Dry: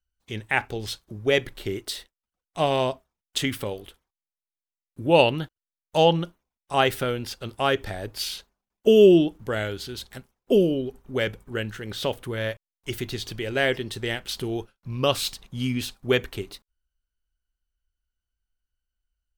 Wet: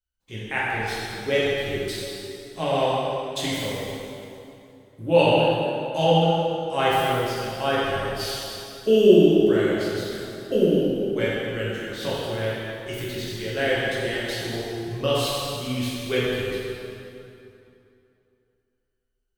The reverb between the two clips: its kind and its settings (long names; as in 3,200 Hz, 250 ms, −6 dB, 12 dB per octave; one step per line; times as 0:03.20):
dense smooth reverb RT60 2.8 s, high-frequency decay 0.75×, DRR −8.5 dB
level −7.5 dB